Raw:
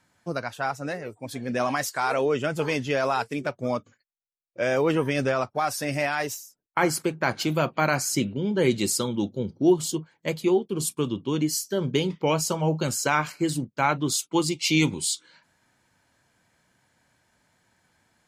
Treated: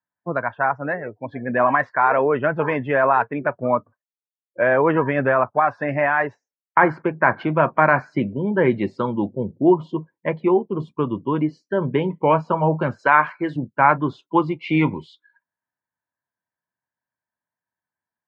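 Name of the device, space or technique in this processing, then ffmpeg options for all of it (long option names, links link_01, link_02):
bass cabinet: -filter_complex "[0:a]asettb=1/sr,asplit=3[link_01][link_02][link_03];[link_01]atrim=end=12.994[link_04];[link_02]atrim=start=12.99:end=13.56,asetpts=PTS-STARTPTS,afade=type=in:duration=0.004:curve=qsin,afade=type=out:start_time=0.566:duration=0.004:curve=qsin,aemphasis=mode=production:type=bsi[link_05];[link_03]atrim=start=13.556[link_06];[link_04][link_05]acrossfade=duration=0.004:curve1=hsin:curve2=qsin[link_07];[link_07][link_06]acrossfade=duration=0.004:curve1=qsin:curve2=hsin,afftdn=noise_reduction=32:noise_floor=-44,highpass=76,equalizer=frequency=630:width_type=q:width=4:gain=4,equalizer=frequency=1000:width_type=q:width=4:gain=10,equalizer=frequency=1700:width_type=q:width=4:gain=8,lowpass=frequency=2100:width=0.5412,lowpass=frequency=2100:width=1.3066,equalizer=frequency=3500:width_type=o:width=0.22:gain=3,volume=3.5dB"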